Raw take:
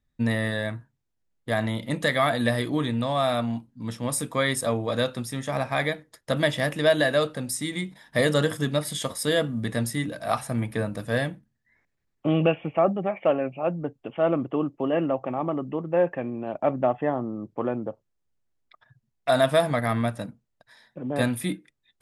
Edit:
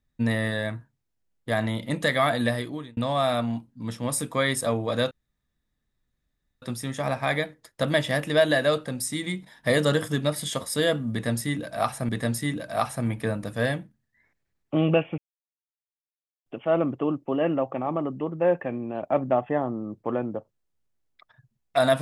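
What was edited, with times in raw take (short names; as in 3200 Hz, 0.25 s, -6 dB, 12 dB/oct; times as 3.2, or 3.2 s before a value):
2.41–2.97 fade out
5.11 insert room tone 1.51 s
9.61–10.58 loop, 2 plays
12.7–13.98 mute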